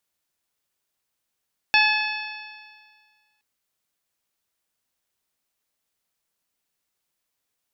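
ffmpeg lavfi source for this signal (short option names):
-f lavfi -i "aevalsrc='0.0891*pow(10,-3*t/1.73)*sin(2*PI*851.27*t)+0.112*pow(10,-3*t/1.73)*sin(2*PI*1710.17*t)+0.168*pow(10,-3*t/1.73)*sin(2*PI*2584.2*t)+0.0562*pow(10,-3*t/1.73)*sin(2*PI*3480.64*t)+0.0596*pow(10,-3*t/1.73)*sin(2*PI*4406.49*t)+0.0422*pow(10,-3*t/1.73)*sin(2*PI*5368.34*t)':d=1.67:s=44100"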